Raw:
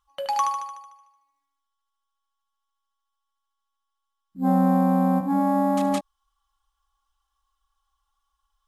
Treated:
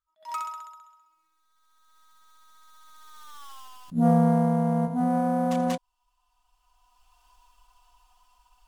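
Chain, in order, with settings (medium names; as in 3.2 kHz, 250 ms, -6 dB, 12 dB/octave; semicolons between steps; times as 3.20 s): self-modulated delay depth 0.068 ms; Doppler pass-by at 3.47 s, 43 m/s, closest 11 m; recorder AGC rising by 15 dB/s; attacks held to a fixed rise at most 290 dB/s; trim +8.5 dB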